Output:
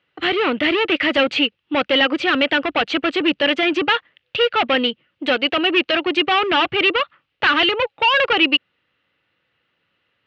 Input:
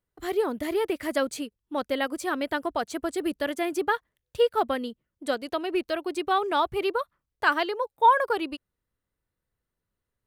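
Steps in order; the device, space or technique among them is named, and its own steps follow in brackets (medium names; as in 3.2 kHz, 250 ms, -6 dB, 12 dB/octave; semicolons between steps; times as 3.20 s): overdrive pedal into a guitar cabinet (overdrive pedal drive 28 dB, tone 5.4 kHz, clips at -8.5 dBFS; cabinet simulation 94–3500 Hz, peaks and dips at 220 Hz -5 dB, 410 Hz -8 dB, 670 Hz -7 dB, 1 kHz -9 dB, 1.6 kHz -3 dB, 2.8 kHz +8 dB); trim +3 dB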